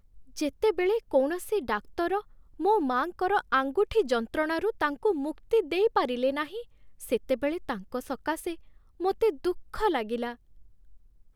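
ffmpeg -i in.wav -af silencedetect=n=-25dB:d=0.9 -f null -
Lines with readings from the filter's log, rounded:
silence_start: 10.28
silence_end: 11.35 | silence_duration: 1.07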